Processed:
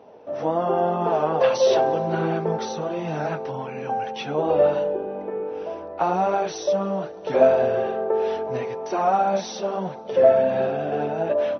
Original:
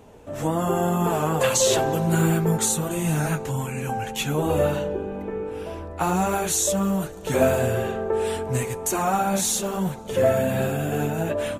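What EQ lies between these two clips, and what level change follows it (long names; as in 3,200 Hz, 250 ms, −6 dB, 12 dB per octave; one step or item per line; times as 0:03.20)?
high-pass filter 170 Hz 12 dB per octave
linear-phase brick-wall low-pass 6,100 Hz
parametric band 630 Hz +11.5 dB 1.5 octaves
−6.0 dB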